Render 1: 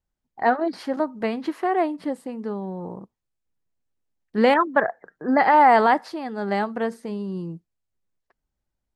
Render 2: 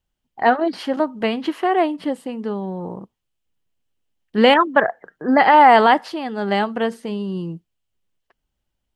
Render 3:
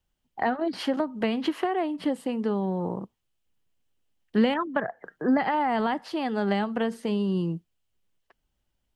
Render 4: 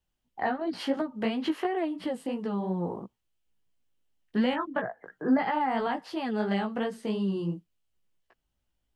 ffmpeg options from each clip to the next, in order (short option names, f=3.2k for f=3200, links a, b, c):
-af "equalizer=f=3k:w=3.5:g=10,volume=4dB"
-filter_complex "[0:a]acrossover=split=210[a][b];[b]acompressor=threshold=-24dB:ratio=8[c];[a][c]amix=inputs=2:normalize=0"
-af "flanger=delay=15.5:depth=3.8:speed=2.9"